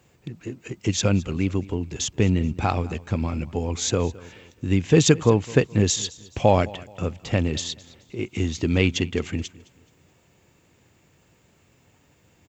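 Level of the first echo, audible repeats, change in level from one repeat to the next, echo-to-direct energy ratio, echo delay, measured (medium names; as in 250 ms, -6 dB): -21.0 dB, 2, -9.0 dB, -20.5 dB, 213 ms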